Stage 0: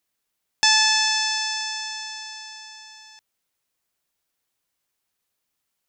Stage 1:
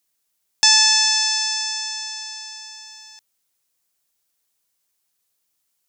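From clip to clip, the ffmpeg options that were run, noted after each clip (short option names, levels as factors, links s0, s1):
-af "bass=f=250:g=-1,treble=f=4000:g=8,volume=0.891"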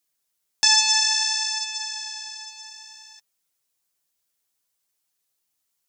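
-af "flanger=delay=6.5:depth=6.5:regen=17:speed=0.59:shape=sinusoidal"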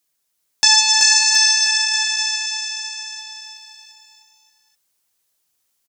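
-af "aecho=1:1:380|722|1030|1307|1556:0.631|0.398|0.251|0.158|0.1,volume=1.68"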